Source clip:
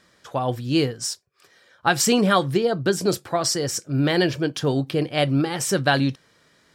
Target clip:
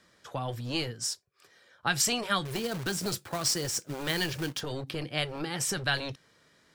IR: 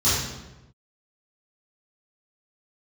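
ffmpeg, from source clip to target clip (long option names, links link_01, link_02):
-filter_complex "[0:a]acrossover=split=240|1300[link_01][link_02][link_03];[link_01]aeval=exprs='0.0376*(abs(mod(val(0)/0.0376+3,4)-2)-1)':channel_layout=same[link_04];[link_02]acompressor=threshold=-31dB:ratio=5[link_05];[link_04][link_05][link_03]amix=inputs=3:normalize=0,asettb=1/sr,asplit=3[link_06][link_07][link_08];[link_06]atrim=end=2.454[link_09];[link_07]atrim=start=2.45:end=4.61,asetpts=PTS-STARTPTS,afade=type=in:duration=0.004:curve=qsin,afade=type=out:start_time=2.156:duration=0.004:curve=qsin,acrusher=bits=2:mode=log:mix=0:aa=0.000001[link_10];[link_08]atrim=start=4.606[link_11];[link_09][link_10]acrossfade=duration=0.004:curve1=hsin:curve2=qsin[link_12];[link_12][link_11]acrossfade=duration=0.004:curve1=qsin:curve2=hsin,volume=-4.5dB"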